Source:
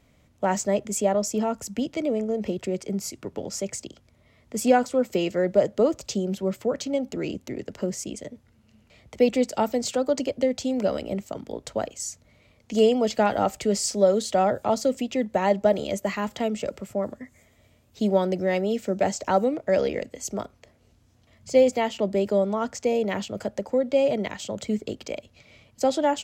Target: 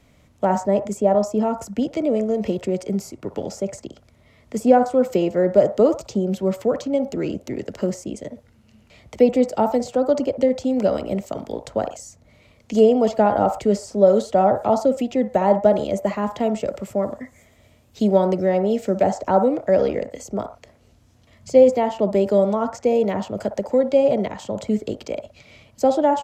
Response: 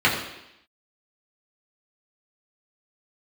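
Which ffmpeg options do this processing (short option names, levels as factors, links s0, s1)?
-filter_complex "[0:a]acrossover=split=670|1100[s0][s1][s2];[s1]aecho=1:1:58.31|116.6:0.891|0.355[s3];[s2]acompressor=threshold=0.00631:ratio=6[s4];[s0][s3][s4]amix=inputs=3:normalize=0,aresample=32000,aresample=44100,volume=1.78"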